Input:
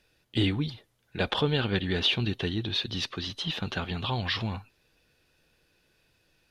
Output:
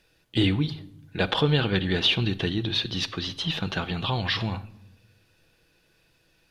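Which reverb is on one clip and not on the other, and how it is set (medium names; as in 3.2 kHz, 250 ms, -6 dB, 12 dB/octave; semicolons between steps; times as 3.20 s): simulated room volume 2400 m³, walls furnished, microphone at 0.67 m; trim +3 dB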